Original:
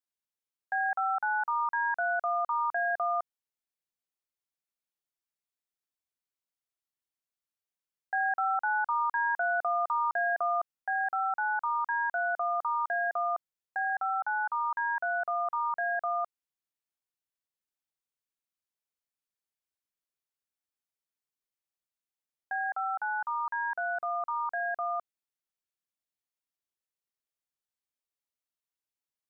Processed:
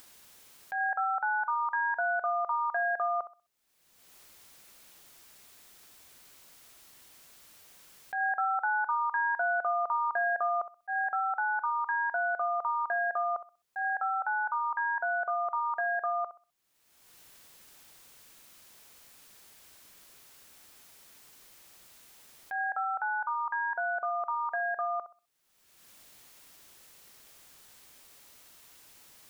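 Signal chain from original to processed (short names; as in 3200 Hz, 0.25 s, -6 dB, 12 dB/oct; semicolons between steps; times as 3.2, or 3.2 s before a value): flutter echo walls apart 11 m, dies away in 0.27 s; auto swell 0.103 s; upward compressor, threshold -28 dBFS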